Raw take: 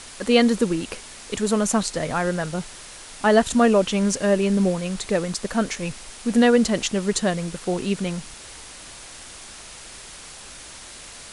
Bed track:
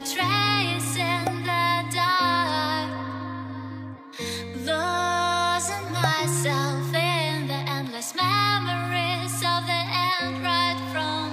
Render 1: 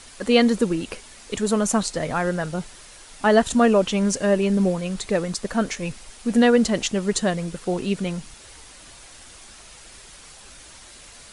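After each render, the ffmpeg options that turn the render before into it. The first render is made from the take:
ffmpeg -i in.wav -af "afftdn=noise_reduction=6:noise_floor=-41" out.wav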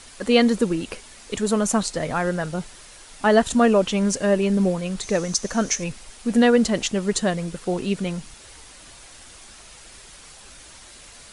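ffmpeg -i in.wav -filter_complex "[0:a]asettb=1/sr,asplit=3[link_01][link_02][link_03];[link_01]atrim=end=5.034[link_04];[link_02]atrim=start=5.03:end=5.84,asetpts=PTS-STARTPTS,afade=type=in:duration=0.004:curve=qsin,afade=type=out:start_time=0.806:duration=0.004:curve=qsin,equalizer=frequency=6100:width_type=o:width=0.39:gain=14[link_05];[link_03]atrim=start=5.836[link_06];[link_04][link_05]acrossfade=duration=0.004:curve1=hsin:curve2=qsin[link_07];[link_07][link_06]acrossfade=duration=0.004:curve1=qsin:curve2=hsin" out.wav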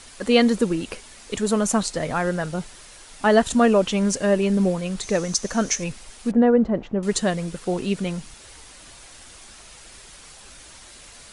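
ffmpeg -i in.wav -filter_complex "[0:a]asettb=1/sr,asplit=3[link_01][link_02][link_03];[link_01]atrim=end=6.314[link_04];[link_02]atrim=start=6.31:end=7.03,asetpts=PTS-STARTPTS,afade=type=in:duration=0.004:curve=qsin,afade=type=out:start_time=0.716:duration=0.004:curve=qsin,lowpass=1000[link_05];[link_03]atrim=start=7.026[link_06];[link_04][link_05]acrossfade=duration=0.004:curve1=hsin:curve2=qsin[link_07];[link_07][link_06]acrossfade=duration=0.004:curve1=qsin:curve2=hsin" out.wav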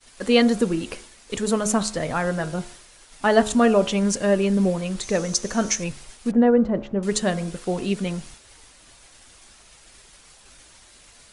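ffmpeg -i in.wav -af "bandreject=frequency=70.75:width_type=h:width=4,bandreject=frequency=141.5:width_type=h:width=4,bandreject=frequency=212.25:width_type=h:width=4,bandreject=frequency=283:width_type=h:width=4,bandreject=frequency=353.75:width_type=h:width=4,bandreject=frequency=424.5:width_type=h:width=4,bandreject=frequency=495.25:width_type=h:width=4,bandreject=frequency=566:width_type=h:width=4,bandreject=frequency=636.75:width_type=h:width=4,bandreject=frequency=707.5:width_type=h:width=4,bandreject=frequency=778.25:width_type=h:width=4,bandreject=frequency=849:width_type=h:width=4,bandreject=frequency=919.75:width_type=h:width=4,bandreject=frequency=990.5:width_type=h:width=4,bandreject=frequency=1061.25:width_type=h:width=4,bandreject=frequency=1132:width_type=h:width=4,bandreject=frequency=1202.75:width_type=h:width=4,bandreject=frequency=1273.5:width_type=h:width=4,bandreject=frequency=1344.25:width_type=h:width=4,bandreject=frequency=1415:width_type=h:width=4,bandreject=frequency=1485.75:width_type=h:width=4,bandreject=frequency=1556.5:width_type=h:width=4,bandreject=frequency=1627.25:width_type=h:width=4,agate=range=-33dB:threshold=-39dB:ratio=3:detection=peak" out.wav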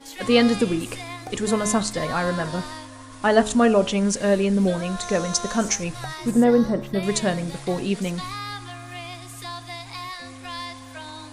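ffmpeg -i in.wav -i bed.wav -filter_complex "[1:a]volume=-11dB[link_01];[0:a][link_01]amix=inputs=2:normalize=0" out.wav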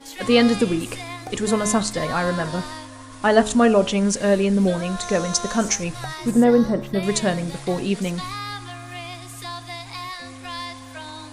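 ffmpeg -i in.wav -af "volume=1.5dB,alimiter=limit=-3dB:level=0:latency=1" out.wav

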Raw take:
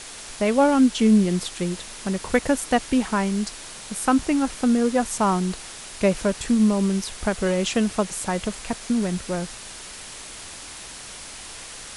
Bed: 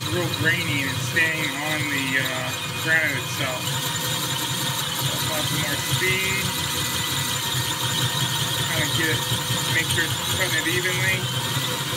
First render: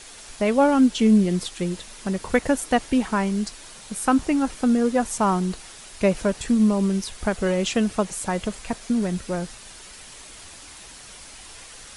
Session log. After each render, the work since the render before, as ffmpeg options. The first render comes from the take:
ffmpeg -i in.wav -af "afftdn=noise_reduction=6:noise_floor=-39" out.wav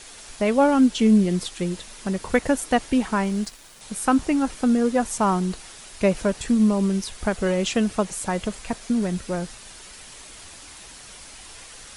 ffmpeg -i in.wav -filter_complex "[0:a]asettb=1/sr,asplit=3[link_01][link_02][link_03];[link_01]atrim=end=3.244[link_04];[link_02]atrim=start=3.24:end=3.81,asetpts=PTS-STARTPTS,afade=type=in:duration=0.004:curve=qsin,afade=type=out:start_time=0.566:duration=0.004:curve=qsin,aeval=exprs='sgn(val(0))*max(abs(val(0))-0.00501,0)':channel_layout=same[link_05];[link_03]atrim=start=3.806[link_06];[link_04][link_05]acrossfade=duration=0.004:curve1=hsin:curve2=qsin[link_07];[link_07][link_06]acrossfade=duration=0.004:curve1=qsin:curve2=hsin" out.wav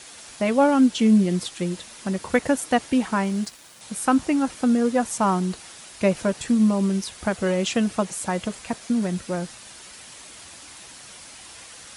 ffmpeg -i in.wav -af "highpass=85,bandreject=frequency=420:width=12" out.wav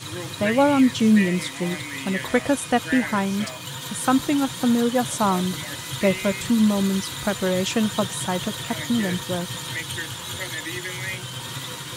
ffmpeg -i in.wav -i bed.wav -filter_complex "[1:a]volume=-8.5dB[link_01];[0:a][link_01]amix=inputs=2:normalize=0" out.wav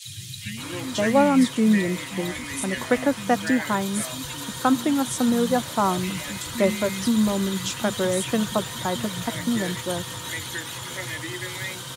ffmpeg -i in.wav -filter_complex "[0:a]acrossover=split=160|2600[link_01][link_02][link_03];[link_01]adelay=50[link_04];[link_02]adelay=570[link_05];[link_04][link_05][link_03]amix=inputs=3:normalize=0" out.wav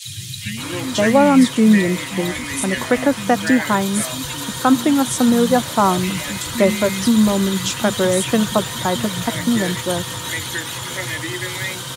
ffmpeg -i in.wav -af "volume=6.5dB,alimiter=limit=-3dB:level=0:latency=1" out.wav

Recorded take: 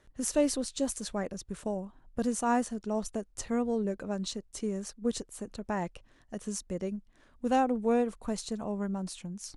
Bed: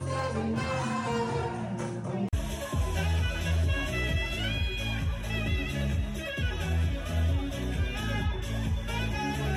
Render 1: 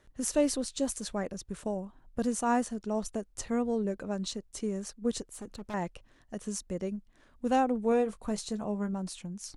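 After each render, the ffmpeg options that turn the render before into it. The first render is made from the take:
ffmpeg -i in.wav -filter_complex "[0:a]asettb=1/sr,asplit=3[link_01][link_02][link_03];[link_01]atrim=end=5.324[link_04];[link_02]atrim=start=5.32:end=5.74,asetpts=PTS-STARTPTS,afade=type=in:duration=0.004:curve=qsin,afade=type=out:start_time=0.416:duration=0.004:curve=qsin,asoftclip=type=hard:threshold=-37dB[link_05];[link_03]atrim=start=5.736[link_06];[link_04][link_05]acrossfade=duration=0.004:curve1=hsin:curve2=qsin[link_07];[link_07][link_06]acrossfade=duration=0.004:curve1=qsin:curve2=hsin,asettb=1/sr,asplit=3[link_08][link_09][link_10];[link_08]atrim=end=7.904[link_11];[link_09]atrim=start=7.9:end=8.93,asetpts=PTS-STARTPTS,afade=type=in:duration=0.004:curve=qsin,afade=type=out:start_time=1.026:duration=0.004:curve=qsin,asplit=2[link_12][link_13];[link_13]adelay=19,volume=-11dB[link_14];[link_12][link_14]amix=inputs=2:normalize=0,atrim=end_sample=45423[link_15];[link_10]atrim=start=8.926[link_16];[link_11][link_15]acrossfade=duration=0.004:curve1=hsin:curve2=qsin[link_17];[link_17][link_16]acrossfade=duration=0.004:curve1=qsin:curve2=hsin" out.wav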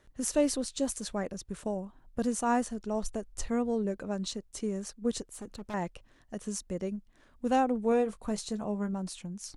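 ffmpeg -i in.wav -filter_complex "[0:a]asettb=1/sr,asplit=3[link_01][link_02][link_03];[link_01]atrim=end=2.334[link_04];[link_02]atrim=start=2.33:end=3.5,asetpts=PTS-STARTPTS,afade=type=in:duration=0.004:curve=qsin,afade=type=out:start_time=1.166:duration=0.004:curve=qsin,asubboost=boost=8.5:cutoff=71[link_05];[link_03]atrim=start=3.496[link_06];[link_04][link_05]acrossfade=duration=0.004:curve1=hsin:curve2=qsin[link_07];[link_07][link_06]acrossfade=duration=0.004:curve1=qsin:curve2=hsin" out.wav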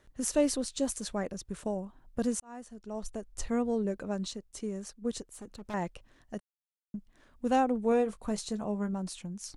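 ffmpeg -i in.wav -filter_complex "[0:a]asplit=6[link_01][link_02][link_03][link_04][link_05][link_06];[link_01]atrim=end=2.4,asetpts=PTS-STARTPTS,afade=type=out:start_time=2.396:duration=0.004:curve=hsin[link_07];[link_02]atrim=start=2.4:end=4.272,asetpts=PTS-STARTPTS,afade=type=in:duration=1.13[link_08];[link_03]atrim=start=4.268:end=5.652,asetpts=PTS-STARTPTS,volume=-3dB[link_09];[link_04]atrim=start=5.648:end=6.4,asetpts=PTS-STARTPTS,afade=type=out:start_time=0.748:duration=0.004:curve=hsin[link_10];[link_05]atrim=start=6.4:end=6.94,asetpts=PTS-STARTPTS,volume=0[link_11];[link_06]atrim=start=6.94,asetpts=PTS-STARTPTS,afade=type=in:duration=0.004:curve=hsin[link_12];[link_07][link_08]concat=n=2:v=0:a=1[link_13];[link_13][link_09]acrossfade=duration=0.004:curve1=hsin:curve2=hsin[link_14];[link_10][link_11][link_12]concat=n=3:v=0:a=1[link_15];[link_14][link_15]acrossfade=duration=0.004:curve1=hsin:curve2=hsin" out.wav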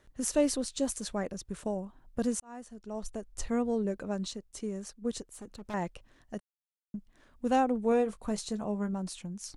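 ffmpeg -i in.wav -af anull out.wav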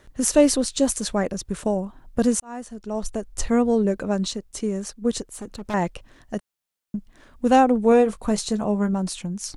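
ffmpeg -i in.wav -af "volume=10.5dB" out.wav

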